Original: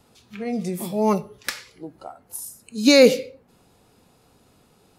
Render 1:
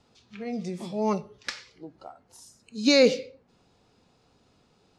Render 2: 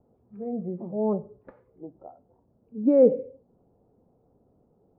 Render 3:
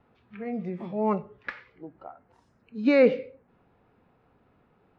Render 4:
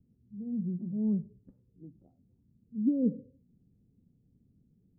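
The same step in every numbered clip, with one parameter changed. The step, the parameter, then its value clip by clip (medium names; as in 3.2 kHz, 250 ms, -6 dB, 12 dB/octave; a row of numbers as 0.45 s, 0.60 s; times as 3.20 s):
four-pole ladder low-pass, frequency: 7.2 kHz, 790 Hz, 2.5 kHz, 270 Hz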